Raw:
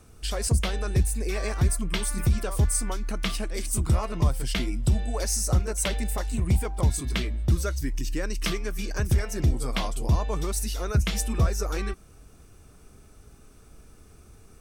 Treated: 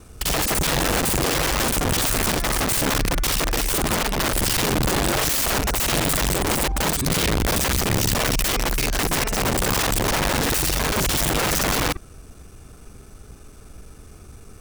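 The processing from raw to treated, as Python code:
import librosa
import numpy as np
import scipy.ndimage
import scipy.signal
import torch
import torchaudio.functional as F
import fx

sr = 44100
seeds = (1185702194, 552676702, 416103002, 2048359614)

y = fx.local_reverse(x, sr, ms=42.0)
y = (np.mod(10.0 ** (25.0 / 20.0) * y + 1.0, 2.0) - 1.0) / 10.0 ** (25.0 / 20.0)
y = y * 10.0 ** (8.5 / 20.0)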